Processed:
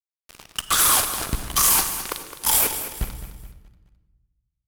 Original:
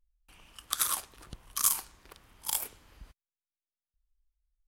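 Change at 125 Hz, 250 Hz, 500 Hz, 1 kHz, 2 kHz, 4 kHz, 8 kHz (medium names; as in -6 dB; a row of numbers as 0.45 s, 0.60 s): +21.0 dB, +21.0 dB, +20.0 dB, +15.5 dB, +17.0 dB, +13.5 dB, +12.0 dB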